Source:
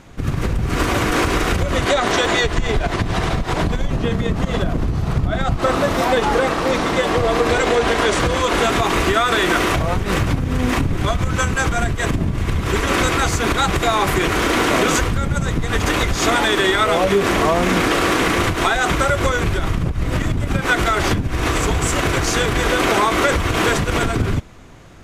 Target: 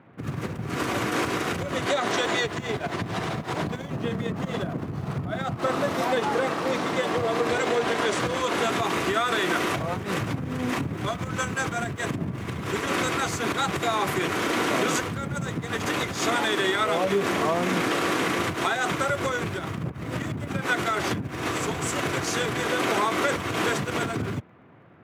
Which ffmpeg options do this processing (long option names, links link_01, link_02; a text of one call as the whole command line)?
ffmpeg -i in.wav -filter_complex "[0:a]highpass=frequency=110:width=0.5412,highpass=frequency=110:width=1.3066,acrossover=split=2600[link_01][link_02];[link_02]aeval=exprs='sgn(val(0))*max(abs(val(0))-0.00335,0)':channel_layout=same[link_03];[link_01][link_03]amix=inputs=2:normalize=0,volume=-7.5dB" out.wav